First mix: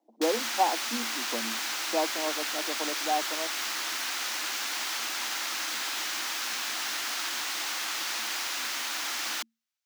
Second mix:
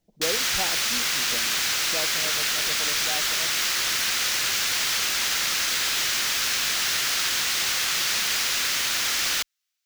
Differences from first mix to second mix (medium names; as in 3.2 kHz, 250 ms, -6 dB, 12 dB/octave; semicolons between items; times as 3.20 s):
speech -10.5 dB; master: remove rippled Chebyshev high-pass 220 Hz, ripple 9 dB